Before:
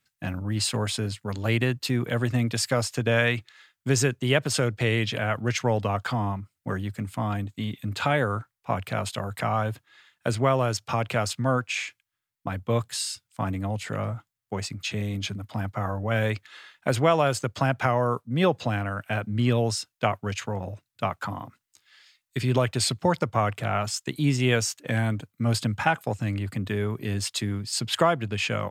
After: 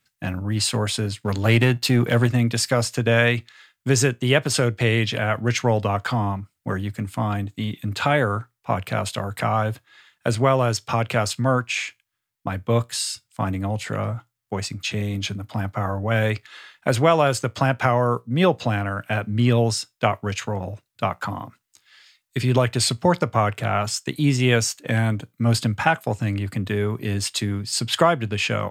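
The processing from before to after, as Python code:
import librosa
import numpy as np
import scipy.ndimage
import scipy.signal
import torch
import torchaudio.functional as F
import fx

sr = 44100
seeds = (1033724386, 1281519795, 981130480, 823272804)

y = fx.leveller(x, sr, passes=1, at=(1.21, 2.27))
y = fx.comb_fb(y, sr, f0_hz=59.0, decay_s=0.19, harmonics='all', damping=0.0, mix_pct=30)
y = y * 10.0 ** (5.5 / 20.0)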